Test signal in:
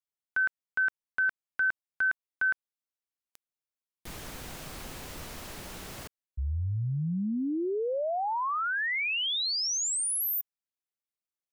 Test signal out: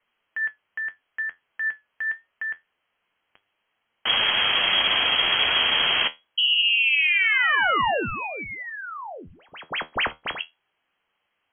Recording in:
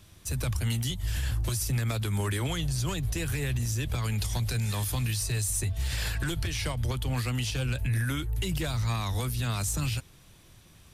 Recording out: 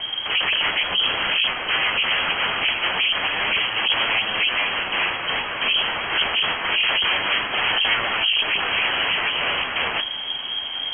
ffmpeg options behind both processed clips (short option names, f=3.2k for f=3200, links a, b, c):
-af "aeval=exprs='0.106*sin(PI/2*10*val(0)/0.106)':c=same,lowpass=f=2.8k:t=q:w=0.5098,lowpass=f=2.8k:t=q:w=0.6013,lowpass=f=2.8k:t=q:w=0.9,lowpass=f=2.8k:t=q:w=2.563,afreqshift=-3300,flanger=delay=8.6:depth=4.6:regen=64:speed=0.25:shape=triangular,volume=7.5dB"